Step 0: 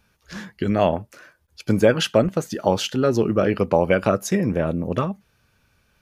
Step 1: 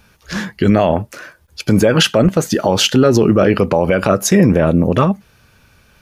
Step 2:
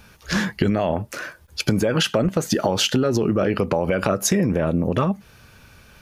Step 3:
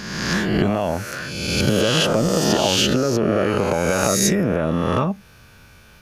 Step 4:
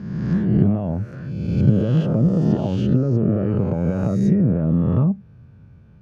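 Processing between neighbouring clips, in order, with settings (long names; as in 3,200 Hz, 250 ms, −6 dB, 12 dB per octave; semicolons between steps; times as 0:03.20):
boost into a limiter +13.5 dB; level −1 dB
downward compressor 10 to 1, threshold −18 dBFS, peak gain reduction 12 dB; level +2 dB
peak hold with a rise ahead of every peak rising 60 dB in 1.37 s; level −2 dB
resonant band-pass 130 Hz, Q 1.5; level +8 dB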